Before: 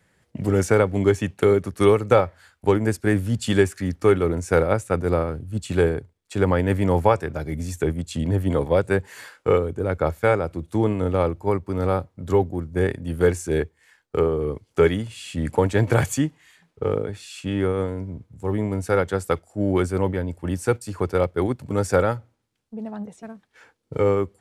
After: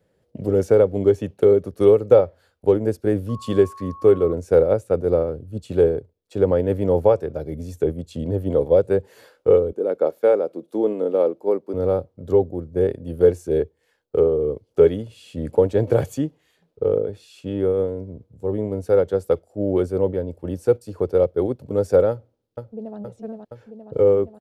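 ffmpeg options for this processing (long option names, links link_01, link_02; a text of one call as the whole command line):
ffmpeg -i in.wav -filter_complex "[0:a]asettb=1/sr,asplit=3[link_01][link_02][link_03];[link_01]atrim=end=3.294[link_04];[link_02]atrim=start=3.29:end=4.33,asetpts=PTS-STARTPTS,afade=type=in:duration=0.004:curve=qsin,afade=type=out:start_time=1.036:duration=0.004:curve=qsin,aeval=exprs='val(0)+0.0398*sin(2*PI*1100*n/s)':channel_layout=same[link_05];[link_03]atrim=start=4.326[link_06];[link_04][link_05]acrossfade=duration=0.004:curve1=hsin:curve2=qsin[link_07];[link_07][link_06]acrossfade=duration=0.004:curve1=qsin:curve2=hsin,asettb=1/sr,asplit=3[link_08][link_09][link_10];[link_08]atrim=end=9.724[link_11];[link_09]atrim=start=9.72:end=11.74,asetpts=PTS-STARTPTS,afade=type=in:duration=0.004:curve=qsin,afade=type=out:start_time=2.016:duration=0.004:curve=qsin,highpass=frequency=220:width=0.5412,highpass=frequency=220:width=1.3066[link_12];[link_10]atrim=start=11.736[link_13];[link_11][link_12]acrossfade=duration=0.004:curve1=hsin:curve2=qsin[link_14];[link_14][link_13]acrossfade=duration=0.004:curve1=qsin:curve2=hsin,asplit=2[link_15][link_16];[link_16]afade=type=in:start_time=22.1:duration=0.01,afade=type=out:start_time=22.97:duration=0.01,aecho=0:1:470|940|1410|1880|2350|2820|3290|3760|4230|4700|5170|5640:0.595662|0.416964|0.291874|0.204312|0.143018|0.100113|0.0700791|0.0490553|0.0343387|0.0240371|0.016826|0.0117782[link_17];[link_15][link_17]amix=inputs=2:normalize=0,equalizer=frequency=500:width_type=o:width=1:gain=11,equalizer=frequency=1000:width_type=o:width=1:gain=-5,equalizer=frequency=2000:width_type=o:width=1:gain=-9,equalizer=frequency=8000:width_type=o:width=1:gain=-9,volume=-4dB" out.wav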